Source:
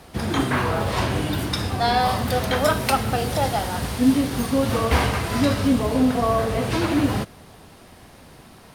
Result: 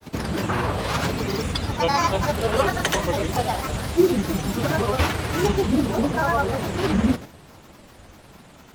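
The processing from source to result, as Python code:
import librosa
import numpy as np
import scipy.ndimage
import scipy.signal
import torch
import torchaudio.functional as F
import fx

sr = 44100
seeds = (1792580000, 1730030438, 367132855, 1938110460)

y = fx.doubler(x, sr, ms=38.0, db=-11)
y = fx.granulator(y, sr, seeds[0], grain_ms=100.0, per_s=20.0, spray_ms=100.0, spread_st=7)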